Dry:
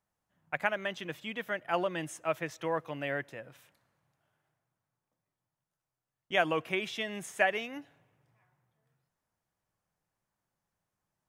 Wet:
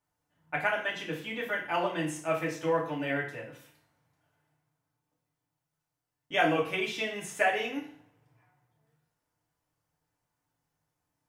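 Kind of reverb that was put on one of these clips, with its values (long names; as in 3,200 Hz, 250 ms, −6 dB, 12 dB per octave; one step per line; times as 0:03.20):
feedback delay network reverb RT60 0.5 s, low-frequency decay 1.1×, high-frequency decay 0.95×, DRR −4 dB
level −2.5 dB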